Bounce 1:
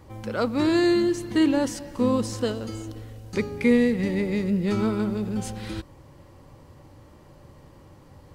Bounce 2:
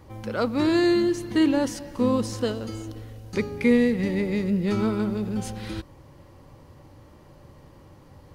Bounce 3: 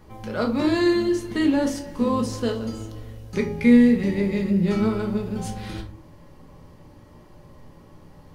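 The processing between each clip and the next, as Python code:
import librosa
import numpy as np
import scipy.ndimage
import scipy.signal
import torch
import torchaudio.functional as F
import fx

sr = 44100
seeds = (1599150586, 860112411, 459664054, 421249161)

y1 = fx.peak_eq(x, sr, hz=7800.0, db=-4.5, octaves=0.21)
y2 = fx.room_shoebox(y1, sr, seeds[0], volume_m3=240.0, walls='furnished', distance_m=1.4)
y2 = y2 * 10.0 ** (-1.5 / 20.0)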